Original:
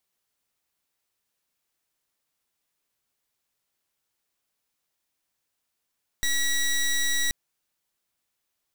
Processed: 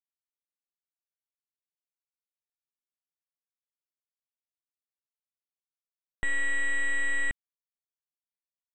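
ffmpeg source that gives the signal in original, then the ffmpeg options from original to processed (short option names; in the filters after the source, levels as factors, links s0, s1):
-f lavfi -i "aevalsrc='0.0631*(2*lt(mod(1930*t,1),0.15)-1)':d=1.08:s=44100"
-af "equalizer=f=440:t=o:w=2.1:g=5,aresample=16000,acrusher=bits=4:mix=0:aa=0.5,aresample=44100,asuperstop=centerf=5200:order=12:qfactor=1.1"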